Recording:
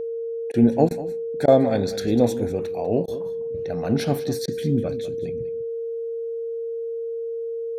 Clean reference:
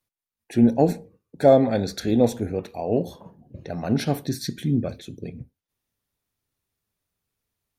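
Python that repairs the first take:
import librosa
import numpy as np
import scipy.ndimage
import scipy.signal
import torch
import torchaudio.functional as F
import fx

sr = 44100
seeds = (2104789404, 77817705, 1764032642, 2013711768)

y = fx.notch(x, sr, hz=460.0, q=30.0)
y = fx.fix_interpolate(y, sr, at_s=(0.52, 0.89, 1.46, 3.06, 4.46), length_ms=17.0)
y = fx.fix_echo_inverse(y, sr, delay_ms=197, level_db=-15.0)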